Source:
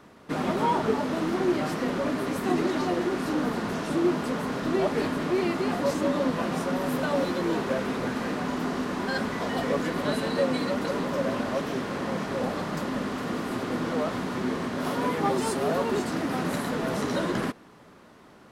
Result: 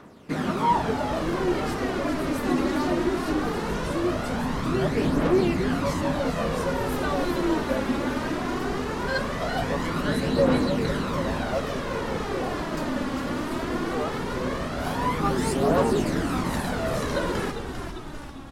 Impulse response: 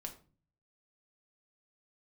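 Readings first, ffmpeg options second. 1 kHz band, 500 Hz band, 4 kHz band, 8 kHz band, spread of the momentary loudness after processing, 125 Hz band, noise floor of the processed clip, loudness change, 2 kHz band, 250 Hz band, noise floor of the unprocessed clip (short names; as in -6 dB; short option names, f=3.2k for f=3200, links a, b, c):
+2.0 dB, +1.5 dB, +2.0 dB, +2.0 dB, 7 LU, +5.0 dB, -34 dBFS, +1.5 dB, +2.0 dB, +1.5 dB, -52 dBFS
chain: -filter_complex "[0:a]asplit=9[a][b][c][d][e][f][g][h][i];[b]adelay=398,afreqshift=-100,volume=-7.5dB[j];[c]adelay=796,afreqshift=-200,volume=-11.9dB[k];[d]adelay=1194,afreqshift=-300,volume=-16.4dB[l];[e]adelay=1592,afreqshift=-400,volume=-20.8dB[m];[f]adelay=1990,afreqshift=-500,volume=-25.2dB[n];[g]adelay=2388,afreqshift=-600,volume=-29.7dB[o];[h]adelay=2786,afreqshift=-700,volume=-34.1dB[p];[i]adelay=3184,afreqshift=-800,volume=-38.6dB[q];[a][j][k][l][m][n][o][p][q]amix=inputs=9:normalize=0,aphaser=in_gain=1:out_gain=1:delay=3.7:decay=0.44:speed=0.19:type=triangular"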